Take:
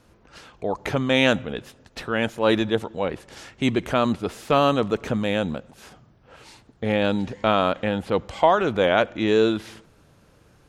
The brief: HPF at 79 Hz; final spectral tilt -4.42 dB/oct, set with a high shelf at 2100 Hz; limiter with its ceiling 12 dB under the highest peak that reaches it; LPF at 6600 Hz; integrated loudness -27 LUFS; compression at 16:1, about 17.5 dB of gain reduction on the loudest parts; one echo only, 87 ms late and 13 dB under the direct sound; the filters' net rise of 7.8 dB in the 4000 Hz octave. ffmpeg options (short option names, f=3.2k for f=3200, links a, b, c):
-af "highpass=79,lowpass=6.6k,highshelf=f=2.1k:g=4,equalizer=f=4k:t=o:g=6.5,acompressor=threshold=-28dB:ratio=16,alimiter=limit=-22.5dB:level=0:latency=1,aecho=1:1:87:0.224,volume=9.5dB"